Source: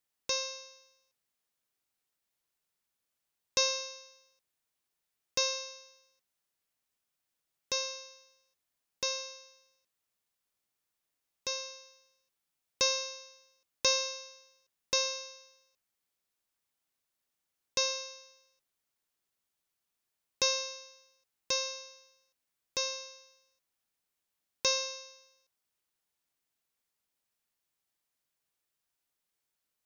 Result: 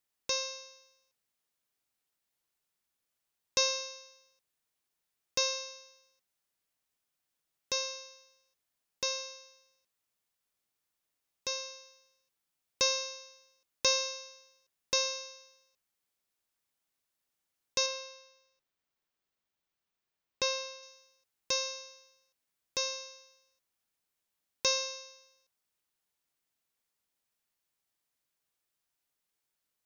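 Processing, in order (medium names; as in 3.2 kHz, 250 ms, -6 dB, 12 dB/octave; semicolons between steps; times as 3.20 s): 17.86–20.83 s: peaking EQ 11 kHz -13.5 dB 1.2 oct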